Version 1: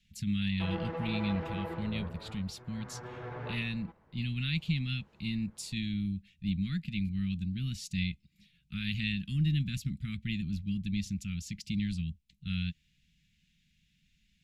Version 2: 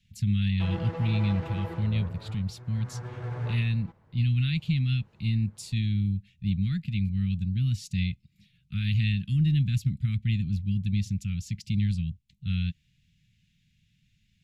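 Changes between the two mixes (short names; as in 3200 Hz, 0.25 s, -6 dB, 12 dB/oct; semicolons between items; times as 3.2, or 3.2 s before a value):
background: remove LPF 3200 Hz 12 dB/oct; master: add bell 110 Hz +14 dB 0.68 oct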